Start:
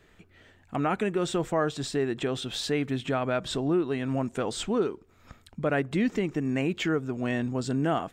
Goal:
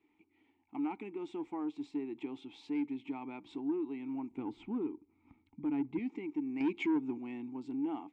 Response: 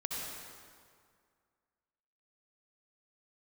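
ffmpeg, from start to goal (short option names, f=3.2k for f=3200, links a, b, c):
-filter_complex "[0:a]equalizer=f=160:t=o:w=0.58:g=-8.5,asettb=1/sr,asplit=3[a][b][c];[a]atrim=end=6.604[d];[b]atrim=start=6.6:end=7.18,asetpts=PTS-STARTPTS,afade=t=in:d=0.004:c=qsin,afade=t=out:st=0.576:d=0.004:c=qsin,acontrast=87[e];[c]atrim=start=7.176[f];[d][e]acrossfade=d=0.004:c1=hsin:c2=qsin[g];[g][f]acrossfade=d=0.004:c1=qsin:c2=hsin,asplit=3[h][i][j];[h]bandpass=f=300:t=q:w=8,volume=0dB[k];[i]bandpass=f=870:t=q:w=8,volume=-6dB[l];[j]bandpass=f=2.24k:t=q:w=8,volume=-9dB[m];[k][l][m]amix=inputs=3:normalize=0,asettb=1/sr,asplit=3[n][o][p];[n]atrim=end=4.314[q];[o]atrim=start=4.31:end=5.99,asetpts=PTS-STARTPTS,afade=t=in:d=0.004:c=qsin,afade=t=out:st=1.676:d=0.004:c=qsin,bass=f=250:g=12,treble=f=4k:g=-11[r];[p]atrim=start=5.986[s];[q][r]acrossfade=d=0.004:c1=hsin:c2=qsin[t];[t][s]acrossfade=d=0.004:c1=qsin:c2=hsin,asoftclip=type=tanh:threshold=-26dB"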